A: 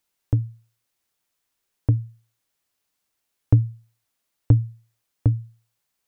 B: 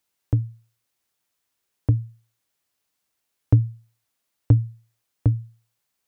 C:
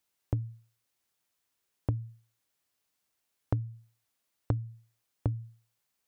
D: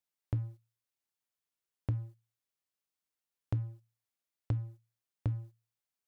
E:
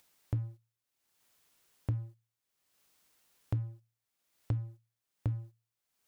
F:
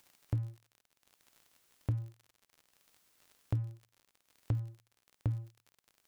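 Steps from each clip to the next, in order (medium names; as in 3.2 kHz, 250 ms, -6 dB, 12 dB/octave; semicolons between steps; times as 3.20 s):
high-pass 42 Hz
compression 10:1, threshold -23 dBFS, peak gain reduction 13.5 dB; trim -3 dB
waveshaping leveller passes 2; trim -8 dB
upward compressor, threshold -53 dBFS
crackle 56 per s -47 dBFS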